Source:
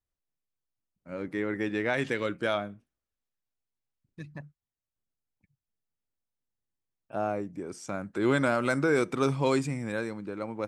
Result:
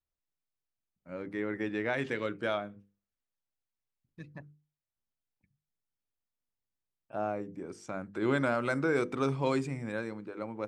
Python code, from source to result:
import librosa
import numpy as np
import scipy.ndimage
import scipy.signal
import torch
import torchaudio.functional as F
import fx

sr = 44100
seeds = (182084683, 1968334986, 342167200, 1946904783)

y = fx.high_shelf(x, sr, hz=6100.0, db=-9.5)
y = fx.hum_notches(y, sr, base_hz=50, count=10)
y = y * librosa.db_to_amplitude(-3.0)